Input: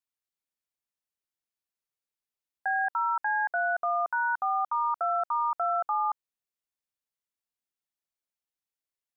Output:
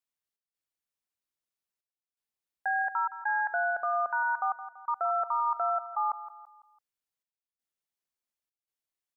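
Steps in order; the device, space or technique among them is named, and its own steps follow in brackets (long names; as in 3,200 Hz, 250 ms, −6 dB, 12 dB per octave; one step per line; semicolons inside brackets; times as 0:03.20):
trance gate with a delay (gate pattern "xx.xxxxxxx..xxx" 83 BPM −60 dB; repeating echo 167 ms, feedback 43%, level −13.5 dB)
level −1 dB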